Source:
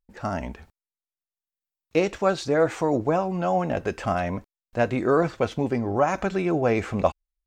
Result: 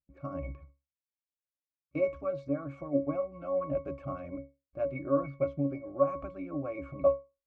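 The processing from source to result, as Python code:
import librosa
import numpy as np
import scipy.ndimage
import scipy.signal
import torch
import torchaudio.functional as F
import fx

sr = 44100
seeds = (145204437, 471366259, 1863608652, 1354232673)

p1 = fx.hpss(x, sr, part='harmonic', gain_db=-11)
p2 = fx.rider(p1, sr, range_db=4, speed_s=2.0)
p3 = p1 + F.gain(torch.from_numpy(p2), 0.5).numpy()
p4 = fx.octave_resonator(p3, sr, note='C#', decay_s=0.25)
y = fx.small_body(p4, sr, hz=(500.0, 1400.0), ring_ms=35, db=6)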